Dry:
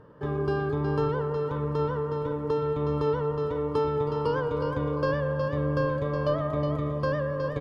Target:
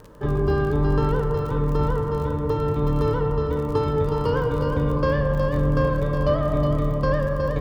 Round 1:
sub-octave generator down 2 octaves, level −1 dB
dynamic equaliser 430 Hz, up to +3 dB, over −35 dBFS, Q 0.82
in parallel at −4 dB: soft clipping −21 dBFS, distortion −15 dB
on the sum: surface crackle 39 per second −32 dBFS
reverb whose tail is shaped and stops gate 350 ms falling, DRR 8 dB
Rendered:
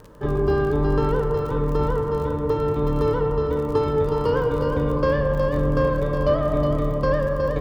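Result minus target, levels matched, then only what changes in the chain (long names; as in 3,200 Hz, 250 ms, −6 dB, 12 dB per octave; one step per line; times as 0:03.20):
125 Hz band −3.0 dB
change: dynamic equaliser 120 Hz, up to +3 dB, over −35 dBFS, Q 0.82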